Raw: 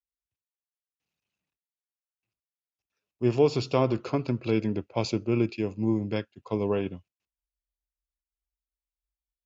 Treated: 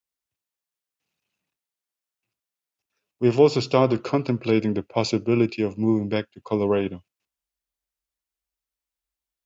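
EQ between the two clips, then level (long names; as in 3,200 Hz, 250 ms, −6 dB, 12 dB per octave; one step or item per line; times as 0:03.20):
high-pass filter 130 Hz 6 dB per octave
+6.0 dB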